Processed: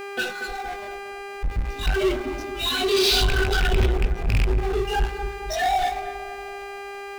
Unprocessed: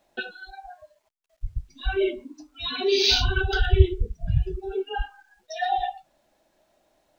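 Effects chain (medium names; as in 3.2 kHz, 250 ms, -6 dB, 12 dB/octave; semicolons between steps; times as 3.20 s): rattle on loud lows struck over -18 dBFS, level -10 dBFS; hum notches 60/120/180/240/300/360 Hz; waveshaping leveller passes 2; chorus voices 6, 1.3 Hz, delay 19 ms, depth 3 ms; mains buzz 400 Hz, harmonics 6, -46 dBFS -2 dB/octave; power-law waveshaper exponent 0.5; filtered feedback delay 231 ms, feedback 61%, low-pass 1.2 kHz, level -9.5 dB; trim -8.5 dB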